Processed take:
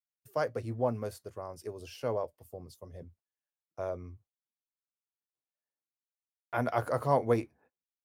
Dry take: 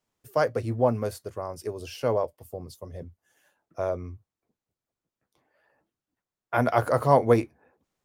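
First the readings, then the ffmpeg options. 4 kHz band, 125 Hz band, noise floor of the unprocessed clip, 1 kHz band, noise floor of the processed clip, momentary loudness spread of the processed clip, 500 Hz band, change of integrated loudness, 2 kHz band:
−7.5 dB, −7.5 dB, below −85 dBFS, −7.5 dB, below −85 dBFS, 20 LU, −7.5 dB, −7.5 dB, −7.5 dB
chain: -af "agate=range=-28dB:threshold=-54dB:ratio=16:detection=peak,volume=-7.5dB"

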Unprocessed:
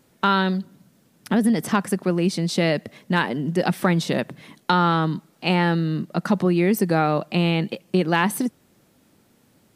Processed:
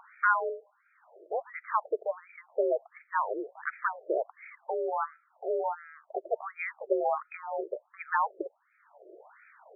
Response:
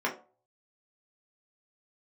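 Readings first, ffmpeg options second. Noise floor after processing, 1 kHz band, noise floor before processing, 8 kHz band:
−71 dBFS, −7.0 dB, −61 dBFS, below −40 dB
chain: -af "acompressor=mode=upward:threshold=-26dB:ratio=2.5,highpass=frequency=290:width_type=q:width=0.5412,highpass=frequency=290:width_type=q:width=1.307,lowpass=frequency=3400:width_type=q:width=0.5176,lowpass=frequency=3400:width_type=q:width=0.7071,lowpass=frequency=3400:width_type=q:width=1.932,afreqshift=54,afftfilt=real='re*between(b*sr/1024,460*pow(1800/460,0.5+0.5*sin(2*PI*1.4*pts/sr))/1.41,460*pow(1800/460,0.5+0.5*sin(2*PI*1.4*pts/sr))*1.41)':imag='im*between(b*sr/1024,460*pow(1800/460,0.5+0.5*sin(2*PI*1.4*pts/sr))/1.41,460*pow(1800/460,0.5+0.5*sin(2*PI*1.4*pts/sr))*1.41)':win_size=1024:overlap=0.75,volume=-2.5dB"

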